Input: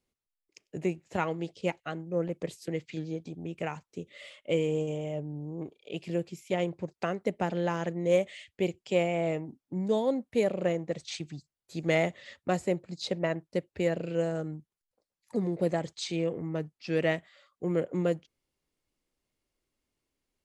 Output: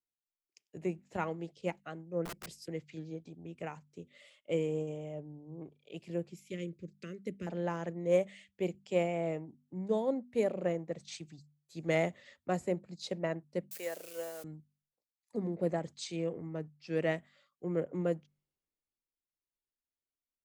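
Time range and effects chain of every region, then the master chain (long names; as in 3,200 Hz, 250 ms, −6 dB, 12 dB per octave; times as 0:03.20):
0:02.25–0:02.66: high-pass filter 49 Hz 24 dB per octave + parametric band 5,100 Hz +10.5 dB 0.25 octaves + wrap-around overflow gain 31.5 dB
0:06.49–0:07.47: Butterworth band-reject 810 Hz, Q 0.71 + parametric band 1,500 Hz −5 dB
0:13.71–0:14.44: spike at every zero crossing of −31.5 dBFS + high-pass filter 560 Hz
whole clip: hum removal 49.08 Hz, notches 5; dynamic equaliser 3,600 Hz, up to −5 dB, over −51 dBFS, Q 0.9; multiband upward and downward expander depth 40%; level −5 dB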